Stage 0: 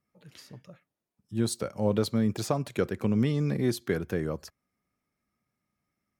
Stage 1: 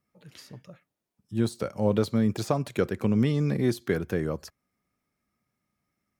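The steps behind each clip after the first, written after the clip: de-esser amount 80%; gain +2 dB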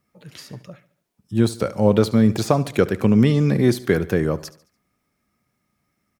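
feedback echo 72 ms, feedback 46%, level -18 dB; gain +8 dB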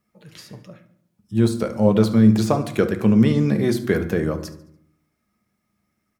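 reverb RT60 0.70 s, pre-delay 5 ms, DRR 7.5 dB; gain -2.5 dB

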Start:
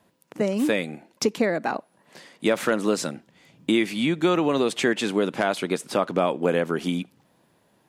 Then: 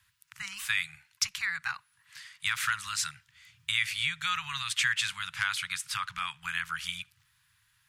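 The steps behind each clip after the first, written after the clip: inverse Chebyshev band-stop 240–600 Hz, stop band 60 dB; gain +1 dB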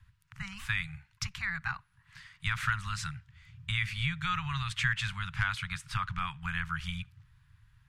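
tilt -4.5 dB/oct; gain +1.5 dB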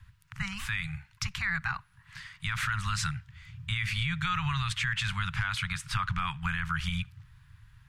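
limiter -27 dBFS, peak gain reduction 11 dB; gain +6.5 dB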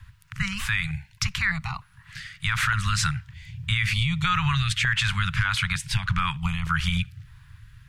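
stepped notch 3.3 Hz 280–1600 Hz; gain +7.5 dB

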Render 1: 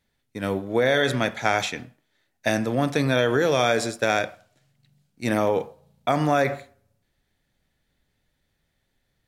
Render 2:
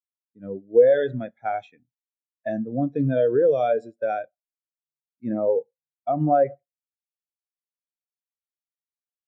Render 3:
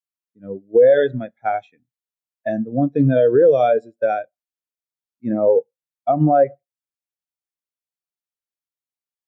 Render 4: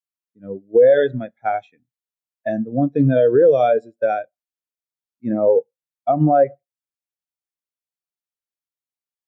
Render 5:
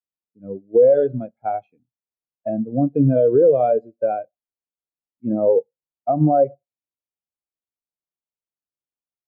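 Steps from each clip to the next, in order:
spectral expander 2.5:1
limiter -14.5 dBFS, peak gain reduction 8.5 dB; upward expander 1.5:1, over -39 dBFS; gain +9 dB
nothing audible
running mean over 24 samples

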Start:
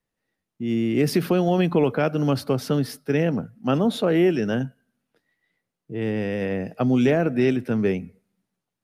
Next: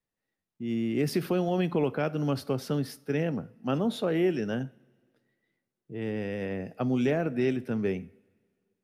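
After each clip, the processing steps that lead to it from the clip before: two-slope reverb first 0.41 s, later 2.1 s, from -20 dB, DRR 16.5 dB; gain -7 dB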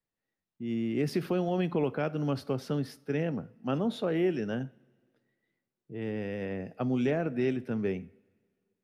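high shelf 7500 Hz -9 dB; gain -2 dB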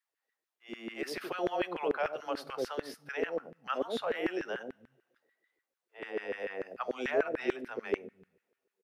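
three bands offset in time highs, mids, lows 80/280 ms, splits 160/580 Hz; LFO high-pass saw down 6.8 Hz 380–1800 Hz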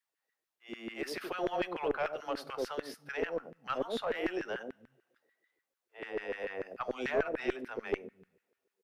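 one diode to ground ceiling -22.5 dBFS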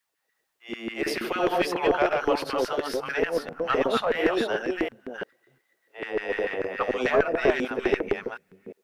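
reverse delay 0.349 s, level -2.5 dB; gain +9 dB

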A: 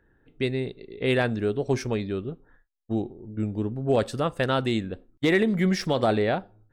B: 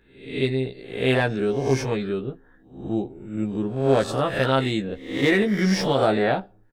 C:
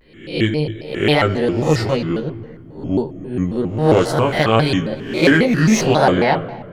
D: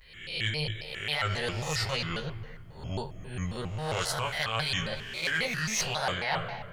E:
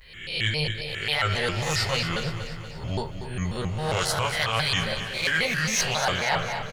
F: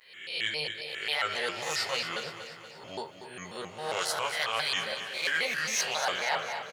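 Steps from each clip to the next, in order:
spectral swells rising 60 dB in 0.57 s; doubler 15 ms -4.5 dB
shoebox room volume 3200 m³, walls mixed, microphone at 0.57 m; shaped vibrato square 3.7 Hz, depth 250 cents; gain +6 dB
passive tone stack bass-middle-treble 10-0-10; reverse; compressor 6:1, threshold -33 dBFS, peak gain reduction 14 dB; reverse; gain +5.5 dB
feedback echo 0.238 s, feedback 56%, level -10.5 dB; gain +5 dB
HPF 380 Hz 12 dB/oct; gain -4.5 dB

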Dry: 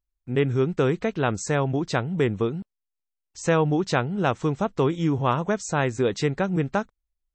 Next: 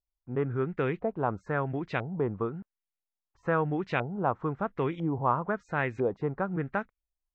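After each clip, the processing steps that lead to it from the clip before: LFO low-pass saw up 1 Hz 710–2600 Hz; gain -8 dB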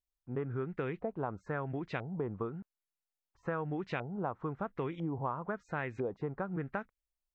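compressor, threshold -28 dBFS, peak gain reduction 8.5 dB; gain -3.5 dB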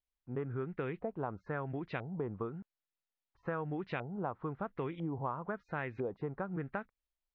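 LPF 4400 Hz 24 dB/oct; gain -1.5 dB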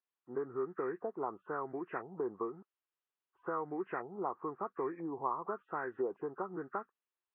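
nonlinear frequency compression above 1100 Hz 1.5:1; speaker cabinet 370–3000 Hz, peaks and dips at 370 Hz +7 dB, 580 Hz -6 dB, 1100 Hz +5 dB, 2200 Hz -6 dB; gain +1.5 dB

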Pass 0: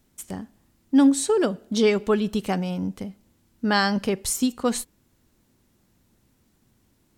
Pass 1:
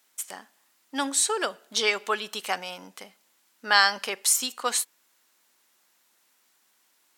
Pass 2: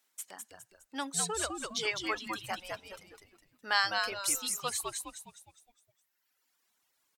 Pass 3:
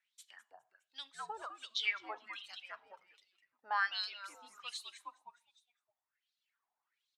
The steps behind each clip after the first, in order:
HPF 1000 Hz 12 dB/oct; gain +5 dB
frequency-shifting echo 0.205 s, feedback 46%, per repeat -100 Hz, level -3 dB; reverb removal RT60 1.6 s; gain -8.5 dB
wah 1.3 Hz 770–4000 Hz, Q 5; on a send at -18 dB: reverb RT60 0.55 s, pre-delay 3 ms; on the sum: gain +2.5 dB

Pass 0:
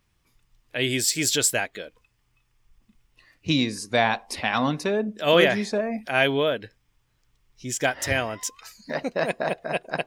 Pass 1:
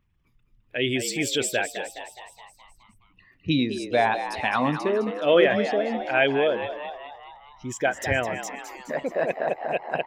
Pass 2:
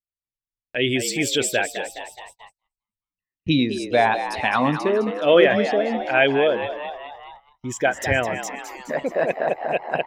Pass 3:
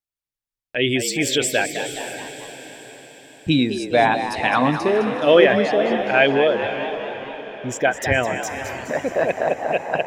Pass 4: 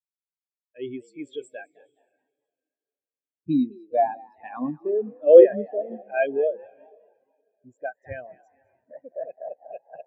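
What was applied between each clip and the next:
formant sharpening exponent 1.5; band shelf 6900 Hz -8 dB; frequency-shifting echo 0.21 s, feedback 57%, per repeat +83 Hz, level -10 dB
gate -46 dBFS, range -41 dB; gain +3.5 dB
diffused feedback echo 0.536 s, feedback 50%, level -11.5 dB; gain +1.5 dB
spectral expander 2.5:1

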